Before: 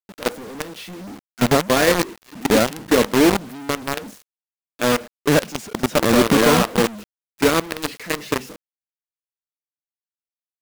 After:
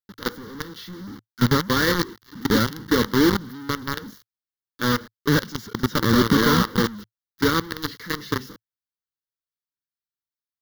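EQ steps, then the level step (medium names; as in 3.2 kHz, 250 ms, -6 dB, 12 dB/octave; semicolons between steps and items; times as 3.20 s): peaking EQ 110 Hz +6.5 dB 0.38 oct; static phaser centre 2.5 kHz, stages 6; 0.0 dB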